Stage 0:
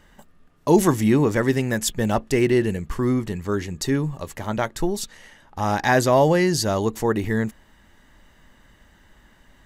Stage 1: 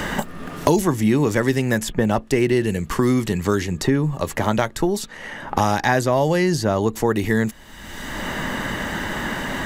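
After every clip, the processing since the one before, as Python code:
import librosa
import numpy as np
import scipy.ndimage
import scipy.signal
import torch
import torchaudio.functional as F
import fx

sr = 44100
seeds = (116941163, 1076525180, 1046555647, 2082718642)

y = fx.band_squash(x, sr, depth_pct=100)
y = y * librosa.db_to_amplitude(1.5)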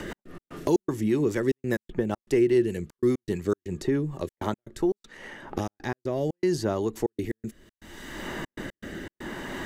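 y = fx.peak_eq(x, sr, hz=360.0, db=9.0, octaves=0.52)
y = fx.step_gate(y, sr, bpm=119, pattern='x.x.xx.xxxx', floor_db=-60.0, edge_ms=4.5)
y = fx.rotary_switch(y, sr, hz=5.0, then_hz=0.65, switch_at_s=3.96)
y = y * librosa.db_to_amplitude(-8.5)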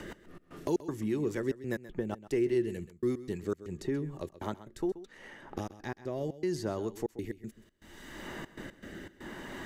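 y = x + 10.0 ** (-15.5 / 20.0) * np.pad(x, (int(130 * sr / 1000.0), 0))[:len(x)]
y = y * librosa.db_to_amplitude(-7.5)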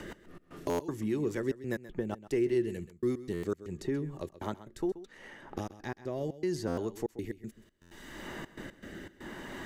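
y = fx.buffer_glitch(x, sr, at_s=(0.69, 3.33, 6.67, 7.81), block=512, repeats=8)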